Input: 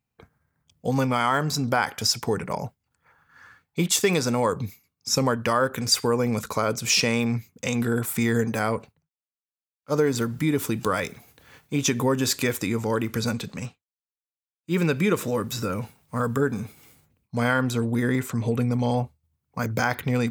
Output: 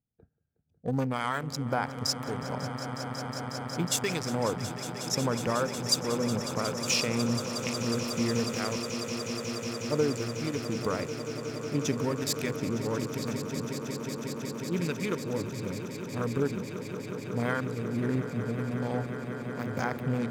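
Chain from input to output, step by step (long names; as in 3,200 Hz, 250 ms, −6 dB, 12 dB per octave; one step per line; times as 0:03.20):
adaptive Wiener filter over 41 samples
two-band tremolo in antiphase 1.1 Hz, depth 50%, crossover 1,200 Hz
echo that builds up and dies away 182 ms, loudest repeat 8, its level −13.5 dB
level −4.5 dB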